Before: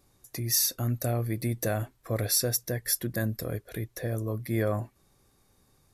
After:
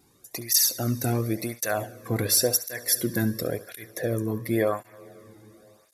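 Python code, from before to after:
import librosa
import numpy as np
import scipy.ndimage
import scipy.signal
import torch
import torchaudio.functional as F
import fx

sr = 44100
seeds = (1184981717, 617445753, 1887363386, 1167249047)

p1 = x + fx.room_flutter(x, sr, wall_m=11.8, rt60_s=0.26, dry=0)
p2 = fx.rev_plate(p1, sr, seeds[0], rt60_s=4.0, hf_ratio=0.8, predelay_ms=0, drr_db=17.5)
p3 = fx.flanger_cancel(p2, sr, hz=0.93, depth_ms=1.8)
y = p3 * 10.0 ** (7.5 / 20.0)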